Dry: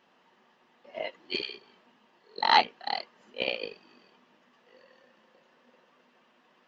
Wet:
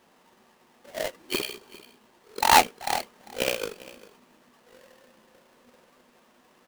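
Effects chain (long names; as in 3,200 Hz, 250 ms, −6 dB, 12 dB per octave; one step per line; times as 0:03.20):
each half-wave held at its own peak
single-tap delay 398 ms −19.5 dB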